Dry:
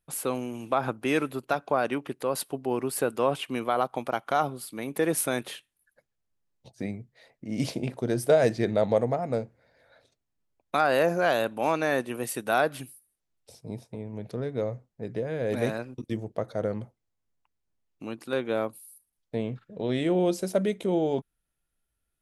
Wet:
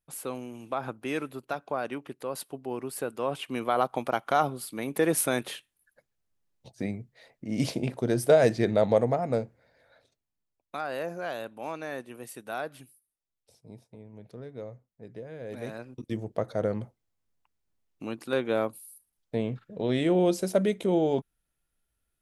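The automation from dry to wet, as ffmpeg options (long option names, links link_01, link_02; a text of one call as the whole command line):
ffmpeg -i in.wav -af "volume=12.5dB,afade=type=in:start_time=3.21:duration=0.64:silence=0.446684,afade=type=out:start_time=9.35:duration=1.4:silence=0.266073,afade=type=in:start_time=15.64:duration=0.72:silence=0.266073" out.wav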